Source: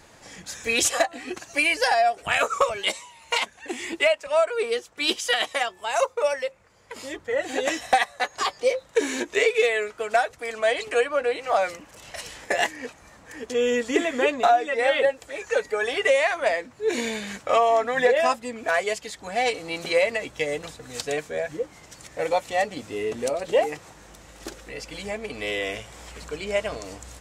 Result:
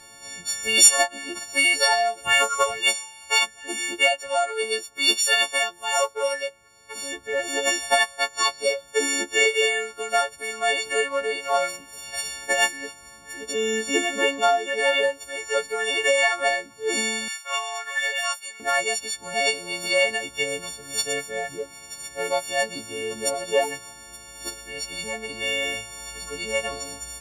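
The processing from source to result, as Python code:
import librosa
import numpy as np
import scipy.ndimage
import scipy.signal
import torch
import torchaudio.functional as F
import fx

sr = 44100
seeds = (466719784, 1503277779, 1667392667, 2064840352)

y = fx.freq_snap(x, sr, grid_st=4)
y = fx.highpass(y, sr, hz=1400.0, slope=12, at=(17.28, 18.6))
y = y * librosa.db_to_amplitude(-2.5)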